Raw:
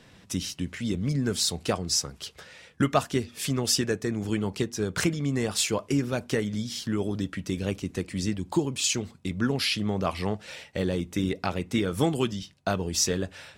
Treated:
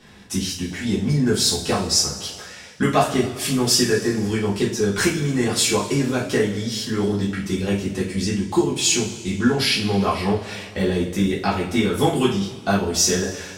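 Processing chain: two-slope reverb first 0.36 s, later 2 s, from -17 dB, DRR -7 dB; 0.70–2.40 s: mains buzz 100 Hz, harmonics 9, -47 dBFS -1 dB/octave

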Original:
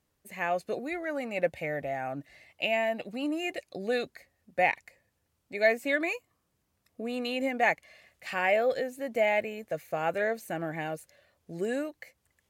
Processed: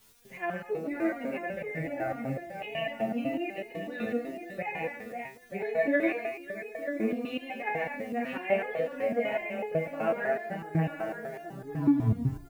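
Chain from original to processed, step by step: tape stop on the ending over 1.15 s; low-pass 2.9 kHz 24 dB/octave; bass shelf 420 Hz +7.5 dB; hum notches 50/100/150/200/250/300/350/400 Hz; on a send: multi-tap echo 41/43/52/137/243/540 ms -18.5/-16.5/-11/-5.5/-10/-11 dB; on the sum: word length cut 10-bit, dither triangular; bass shelf 96 Hz +8.5 dB; echo from a far wall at 160 m, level -8 dB; in parallel at -2.5 dB: compression, threshold -33 dBFS, peak gain reduction 16 dB; on the sum: resonator arpeggio 8 Hz 110–420 Hz; trim +5 dB

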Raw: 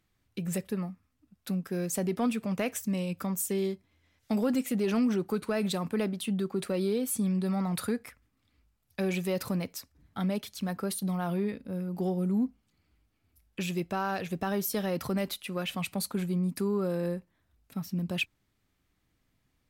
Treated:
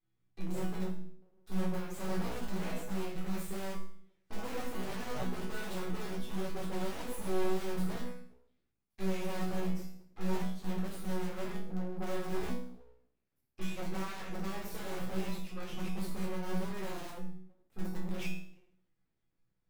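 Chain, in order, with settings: Chebyshev shaper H 3 -18 dB, 8 -19 dB, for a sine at -19 dBFS; treble shelf 2.8 kHz -7 dB; simulated room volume 430 m³, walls furnished, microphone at 3.8 m; in parallel at -8 dB: integer overflow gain 19.5 dB; on the sum: chord resonator B2 sus4, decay 0.54 s; full-wave rectifier; trim +3.5 dB

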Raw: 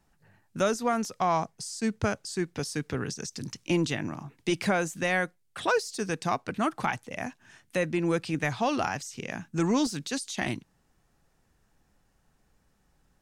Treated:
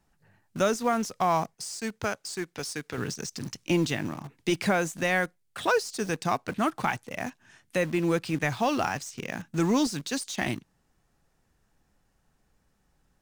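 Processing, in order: 1.54–2.98 s: bass shelf 320 Hz -11 dB; in parallel at -9 dB: word length cut 6-bit, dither none; on the sum: trim -1.5 dB

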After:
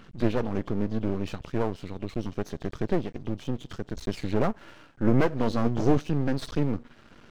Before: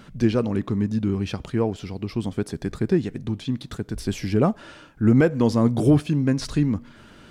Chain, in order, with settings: knee-point frequency compression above 2.6 kHz 1.5:1; half-wave rectifier; 4.47–5.20 s: dynamic bell 4.5 kHz, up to -6 dB, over -56 dBFS, Q 1.4; trim -1 dB

